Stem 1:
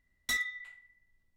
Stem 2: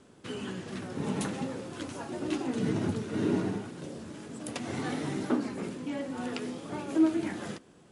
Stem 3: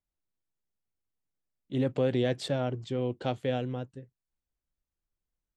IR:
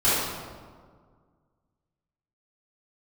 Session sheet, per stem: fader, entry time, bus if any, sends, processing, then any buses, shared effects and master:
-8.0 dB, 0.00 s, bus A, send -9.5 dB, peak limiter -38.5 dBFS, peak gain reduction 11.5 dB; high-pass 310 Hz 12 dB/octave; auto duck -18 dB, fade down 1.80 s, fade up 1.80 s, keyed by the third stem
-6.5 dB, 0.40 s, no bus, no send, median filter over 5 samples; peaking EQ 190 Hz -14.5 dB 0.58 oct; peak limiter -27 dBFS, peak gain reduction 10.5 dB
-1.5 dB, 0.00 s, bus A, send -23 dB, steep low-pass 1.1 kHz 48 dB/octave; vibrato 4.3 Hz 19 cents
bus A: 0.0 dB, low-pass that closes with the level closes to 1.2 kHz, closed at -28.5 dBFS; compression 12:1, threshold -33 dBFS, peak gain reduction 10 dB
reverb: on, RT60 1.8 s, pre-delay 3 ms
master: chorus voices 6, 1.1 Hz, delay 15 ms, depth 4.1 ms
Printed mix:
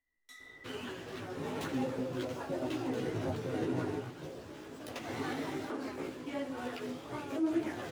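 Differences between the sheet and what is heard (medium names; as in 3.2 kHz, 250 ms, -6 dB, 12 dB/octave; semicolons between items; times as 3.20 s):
stem 2 -6.5 dB -> +2.0 dB; reverb return -9.5 dB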